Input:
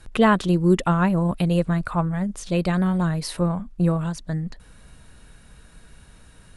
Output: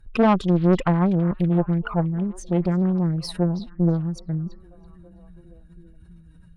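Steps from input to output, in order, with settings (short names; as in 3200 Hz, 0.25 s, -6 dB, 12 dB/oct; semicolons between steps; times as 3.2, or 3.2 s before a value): spectral contrast raised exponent 1.8; tube stage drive 16 dB, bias 0.8; delay with a stepping band-pass 0.328 s, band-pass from 3500 Hz, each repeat -0.7 oct, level -12 dB; Doppler distortion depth 0.46 ms; gain +5 dB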